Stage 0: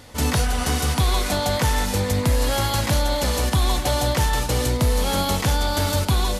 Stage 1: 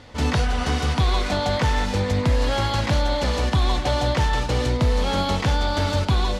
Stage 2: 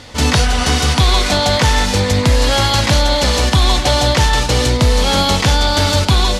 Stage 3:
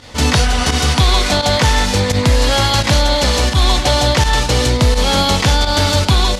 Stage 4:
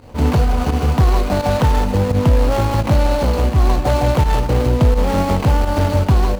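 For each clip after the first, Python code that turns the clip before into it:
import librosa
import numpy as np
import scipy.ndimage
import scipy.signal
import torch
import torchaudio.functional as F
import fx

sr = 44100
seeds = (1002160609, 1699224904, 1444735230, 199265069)

y1 = scipy.signal.sosfilt(scipy.signal.butter(2, 4500.0, 'lowpass', fs=sr, output='sos'), x)
y2 = fx.high_shelf(y1, sr, hz=3500.0, db=11.5)
y2 = y2 * librosa.db_to_amplitude(7.0)
y3 = fx.volume_shaper(y2, sr, bpm=85, per_beat=1, depth_db=-11, release_ms=63.0, shape='fast start')
y4 = scipy.signal.medfilt(y3, 25)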